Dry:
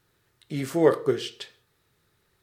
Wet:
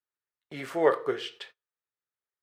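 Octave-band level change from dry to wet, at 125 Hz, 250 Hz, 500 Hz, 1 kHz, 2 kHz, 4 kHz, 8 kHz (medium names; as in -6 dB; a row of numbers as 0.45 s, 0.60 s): -13.5 dB, -8.5 dB, -3.5 dB, +1.5 dB, +1.0 dB, -3.0 dB, no reading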